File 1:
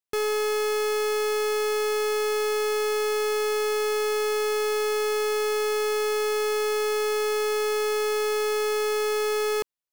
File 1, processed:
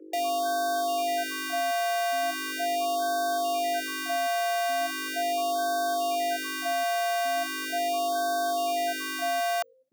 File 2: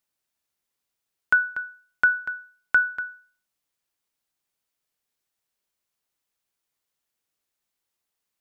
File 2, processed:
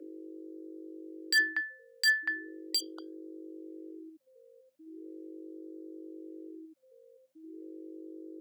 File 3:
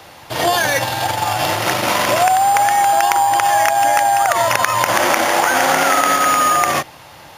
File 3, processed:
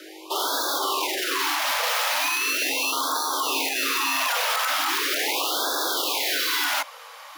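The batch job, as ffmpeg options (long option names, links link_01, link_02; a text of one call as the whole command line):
ffmpeg -i in.wav -af "aeval=exprs='val(0)+0.00794*(sin(2*PI*50*n/s)+sin(2*PI*2*50*n/s)/2+sin(2*PI*3*50*n/s)/3+sin(2*PI*4*50*n/s)/4+sin(2*PI*5*50*n/s)/5)':channel_layout=same,aeval=exprs='0.119*(abs(mod(val(0)/0.119+3,4)-2)-1)':channel_layout=same,aeval=exprs='0.126*(cos(1*acos(clip(val(0)/0.126,-1,1)))-cos(1*PI/2))+0.0112*(cos(3*acos(clip(val(0)/0.126,-1,1)))-cos(3*PI/2))':channel_layout=same,afreqshift=270,afftfilt=real='re*(1-between(b*sr/1024,320*pow(2400/320,0.5+0.5*sin(2*PI*0.39*pts/sr))/1.41,320*pow(2400/320,0.5+0.5*sin(2*PI*0.39*pts/sr))*1.41))':imag='im*(1-between(b*sr/1024,320*pow(2400/320,0.5+0.5*sin(2*PI*0.39*pts/sr))/1.41,320*pow(2400/320,0.5+0.5*sin(2*PI*0.39*pts/sr))*1.41))':win_size=1024:overlap=0.75" out.wav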